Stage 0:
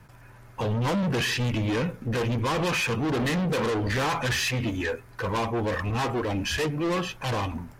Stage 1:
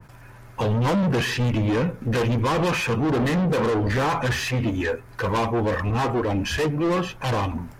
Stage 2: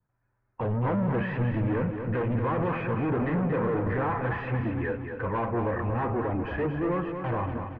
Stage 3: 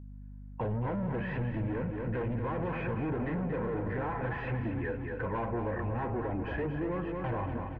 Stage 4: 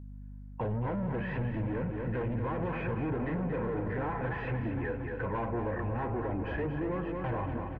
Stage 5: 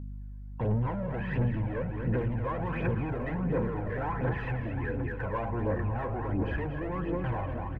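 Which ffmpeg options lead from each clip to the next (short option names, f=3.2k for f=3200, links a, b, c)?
-af "adynamicequalizer=threshold=0.00794:dfrequency=1800:dqfactor=0.7:tfrequency=1800:tqfactor=0.7:attack=5:release=100:ratio=0.375:range=3.5:mode=cutabove:tftype=highshelf,volume=4.5dB"
-af "agate=range=-25dB:threshold=-31dB:ratio=16:detection=peak,lowpass=f=2k:w=0.5412,lowpass=f=2k:w=1.3066,aecho=1:1:231|462|693|924|1155|1386:0.447|0.214|0.103|0.0494|0.0237|0.0114,volume=-6dB"
-af "bandreject=f=1.2k:w=7,acompressor=threshold=-29dB:ratio=6,aeval=exprs='val(0)+0.00708*(sin(2*PI*50*n/s)+sin(2*PI*2*50*n/s)/2+sin(2*PI*3*50*n/s)/3+sin(2*PI*4*50*n/s)/4+sin(2*PI*5*50*n/s)/5)':c=same,volume=-1.5dB"
-filter_complex "[0:a]areverse,acompressor=mode=upward:threshold=-41dB:ratio=2.5,areverse,asplit=2[a][b];[b]adelay=758,volume=-14dB,highshelf=f=4k:g=-17.1[c];[a][c]amix=inputs=2:normalize=0"
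-af "aphaser=in_gain=1:out_gain=1:delay=1.9:decay=0.5:speed=1.4:type=triangular"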